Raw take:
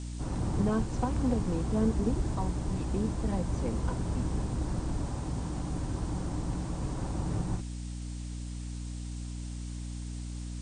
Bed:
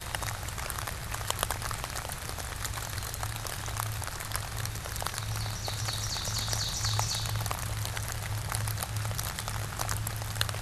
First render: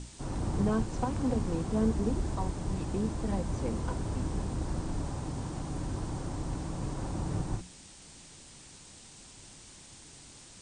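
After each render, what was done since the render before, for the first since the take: hum notches 60/120/180/240/300 Hz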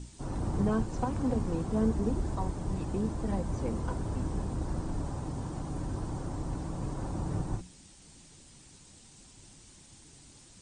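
noise reduction 6 dB, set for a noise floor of -52 dBFS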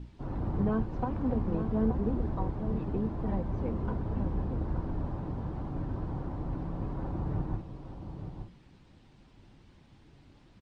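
distance through air 350 m; echo from a far wall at 150 m, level -8 dB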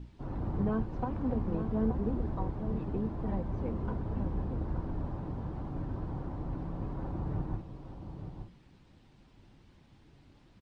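trim -2 dB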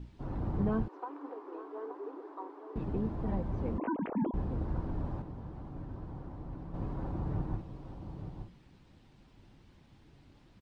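0.88–2.76 s: rippled Chebyshev high-pass 280 Hz, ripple 9 dB; 3.78–4.34 s: formants replaced by sine waves; 5.22–6.74 s: gain -6 dB

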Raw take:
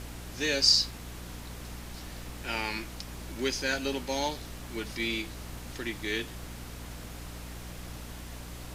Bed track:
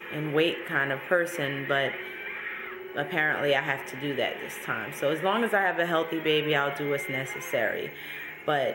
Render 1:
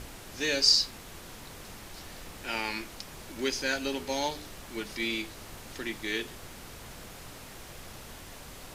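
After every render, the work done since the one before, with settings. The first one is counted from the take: de-hum 60 Hz, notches 7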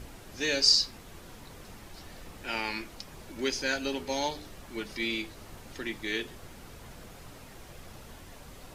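noise reduction 6 dB, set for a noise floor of -47 dBFS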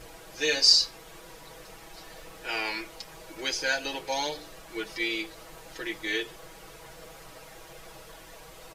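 resonant low shelf 340 Hz -7 dB, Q 1.5; comb 6.2 ms, depth 93%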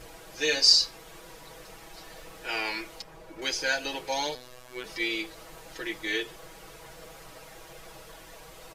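3.02–3.42 s: treble shelf 2.3 kHz -11.5 dB; 4.35–4.84 s: robot voice 125 Hz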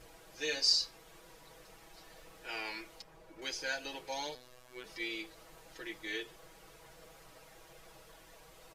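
trim -9.5 dB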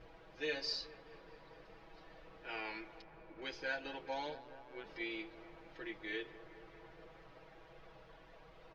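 distance through air 290 m; feedback echo behind a low-pass 211 ms, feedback 74%, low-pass 1.7 kHz, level -15 dB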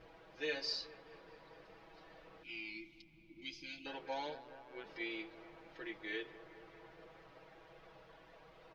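2.43–3.86 s: time-frequency box 350–2000 Hz -25 dB; bass shelf 89 Hz -8.5 dB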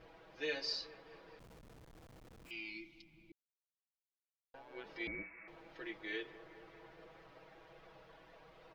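1.39–2.51 s: Schmitt trigger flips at -55 dBFS; 3.32–4.54 s: mute; 5.07–5.48 s: frequency inversion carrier 2.6 kHz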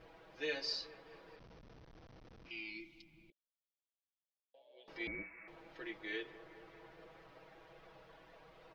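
1.36–2.80 s: steep low-pass 6 kHz 96 dB/octave; 3.30–4.88 s: two resonant band-passes 1.4 kHz, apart 2.5 oct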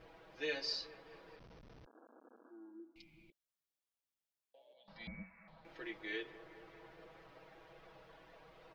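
1.86–2.96 s: brick-wall FIR band-pass 220–1700 Hz; 4.73–5.65 s: FFT filter 140 Hz 0 dB, 200 Hz +10 dB, 370 Hz -27 dB, 560 Hz -3 dB, 1 kHz -2 dB, 2.6 kHz -11 dB, 4.1 kHz +1 dB, 6.6 kHz -15 dB

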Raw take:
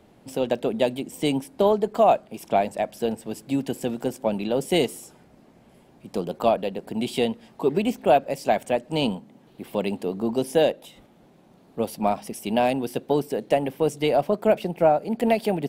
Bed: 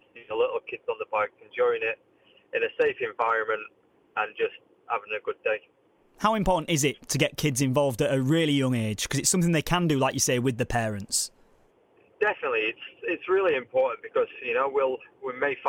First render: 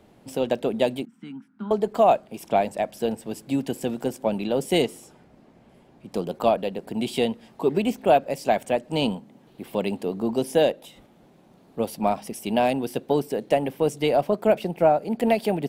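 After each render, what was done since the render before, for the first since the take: 1.05–1.71 s: two resonant band-passes 550 Hz, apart 2.7 oct; 4.82–6.12 s: treble shelf 6.8 kHz -9 dB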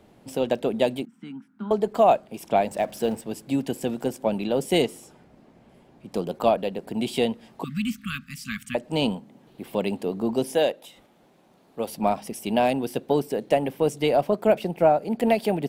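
2.71–3.21 s: companding laws mixed up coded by mu; 7.64–8.75 s: brick-wall FIR band-stop 260–1100 Hz; 10.54–11.88 s: bass shelf 300 Hz -9 dB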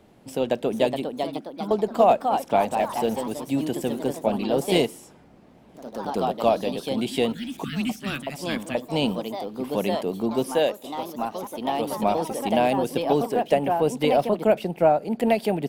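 ever faster or slower copies 475 ms, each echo +2 st, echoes 3, each echo -6 dB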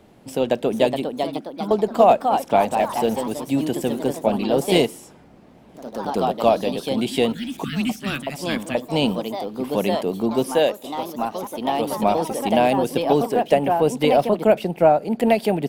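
trim +3.5 dB

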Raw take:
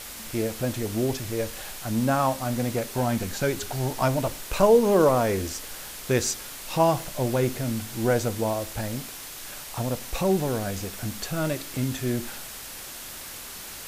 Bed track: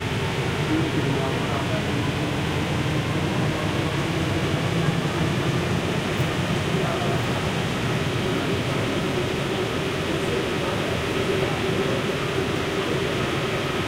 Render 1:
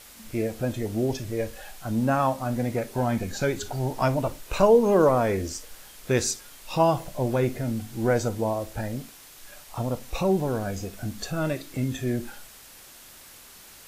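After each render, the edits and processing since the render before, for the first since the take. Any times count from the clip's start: noise print and reduce 9 dB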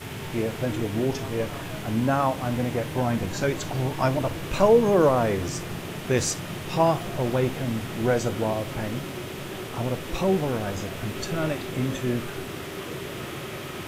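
add bed track -10.5 dB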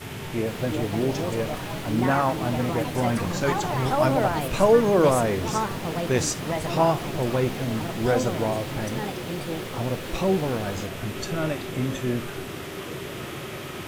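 ever faster or slower copies 462 ms, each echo +5 st, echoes 2, each echo -6 dB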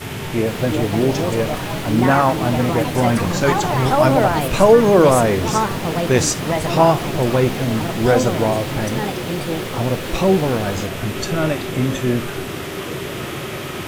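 trim +7.5 dB; peak limiter -2 dBFS, peak gain reduction 2 dB

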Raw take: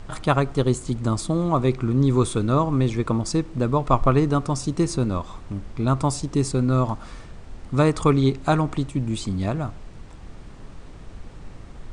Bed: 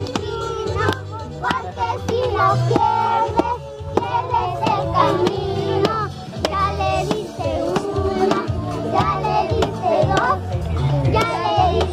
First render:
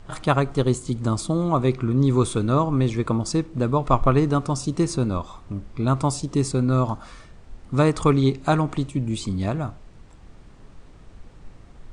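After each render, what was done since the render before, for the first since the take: noise print and reduce 6 dB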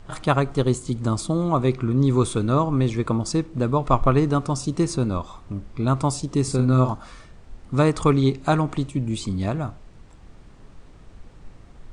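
6.43–6.93 s: doubling 47 ms -6.5 dB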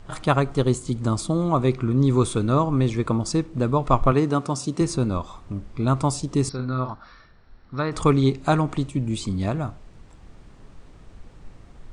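4.12–4.81 s: high-pass 150 Hz; 6.49–7.92 s: rippled Chebyshev low-pass 5.7 kHz, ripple 9 dB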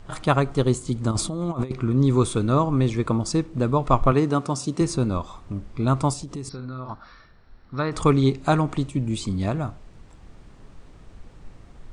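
1.11–1.71 s: compressor with a negative ratio -25 dBFS, ratio -0.5; 6.13–6.90 s: compression 4:1, threshold -31 dBFS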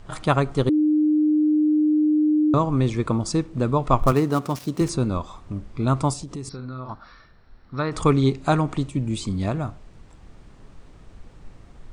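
0.69–2.54 s: bleep 304 Hz -15.5 dBFS; 3.99–4.89 s: dead-time distortion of 0.066 ms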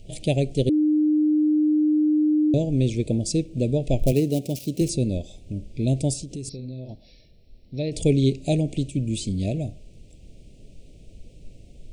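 elliptic band-stop 610–2500 Hz, stop band 70 dB; treble shelf 7.5 kHz +6 dB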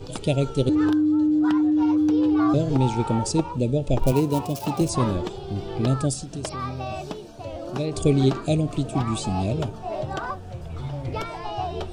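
add bed -13 dB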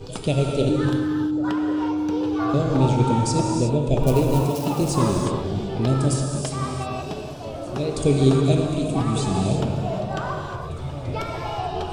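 repeats whose band climbs or falls 549 ms, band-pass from 180 Hz, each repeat 1.4 oct, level -9 dB; gated-style reverb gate 390 ms flat, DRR 1 dB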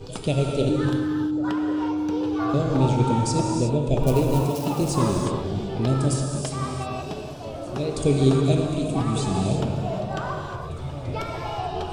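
trim -1.5 dB

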